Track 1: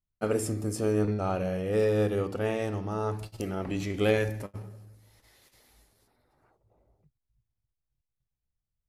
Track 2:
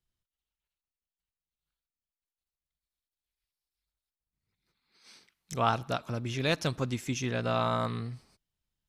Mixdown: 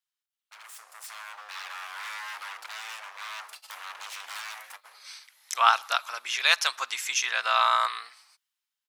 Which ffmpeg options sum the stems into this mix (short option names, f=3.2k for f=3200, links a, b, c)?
-filter_complex "[0:a]acompressor=threshold=-28dB:ratio=5,aeval=exprs='0.0158*(abs(mod(val(0)/0.0158+3,4)-2)-1)':c=same,adelay=300,volume=-6dB[a];[1:a]volume=0dB[b];[a][b]amix=inputs=2:normalize=0,highpass=f=1k:w=0.5412,highpass=f=1k:w=1.3066,dynaudnorm=f=200:g=11:m=12dB"